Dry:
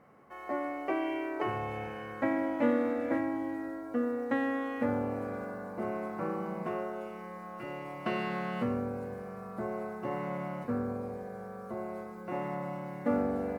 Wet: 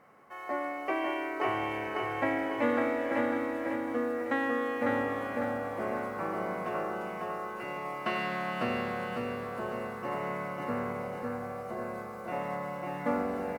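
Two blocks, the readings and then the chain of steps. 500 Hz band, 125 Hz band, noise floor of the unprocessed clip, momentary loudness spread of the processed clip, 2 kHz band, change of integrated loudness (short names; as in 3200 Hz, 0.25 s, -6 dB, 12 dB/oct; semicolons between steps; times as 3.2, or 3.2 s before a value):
+1.5 dB, -2.0 dB, -44 dBFS, 7 LU, +6.0 dB, +1.5 dB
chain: low shelf 490 Hz -10 dB; on a send: feedback echo 0.55 s, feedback 42%, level -3 dB; on the sum: gain +4.5 dB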